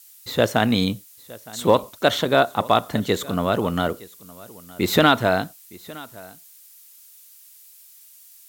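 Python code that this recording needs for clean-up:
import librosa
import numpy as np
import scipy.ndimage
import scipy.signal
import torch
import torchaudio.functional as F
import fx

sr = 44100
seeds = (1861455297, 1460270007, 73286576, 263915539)

y = fx.noise_reduce(x, sr, print_start_s=7.71, print_end_s=8.21, reduce_db=17.0)
y = fx.fix_echo_inverse(y, sr, delay_ms=914, level_db=-21.5)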